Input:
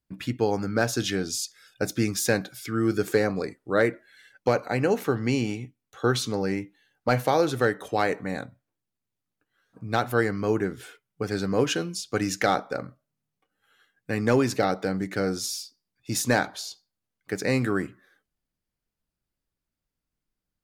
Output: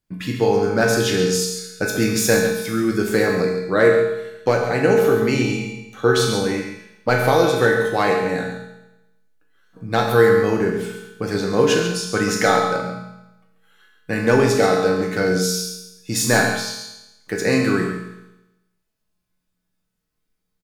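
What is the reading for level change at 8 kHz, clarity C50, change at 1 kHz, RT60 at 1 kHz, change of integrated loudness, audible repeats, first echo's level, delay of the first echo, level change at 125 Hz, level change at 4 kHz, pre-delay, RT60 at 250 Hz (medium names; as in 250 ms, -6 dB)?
+7.5 dB, 2.5 dB, +6.5 dB, 0.95 s, +7.5 dB, 1, -8.5 dB, 137 ms, +6.0 dB, +7.5 dB, 5 ms, 0.95 s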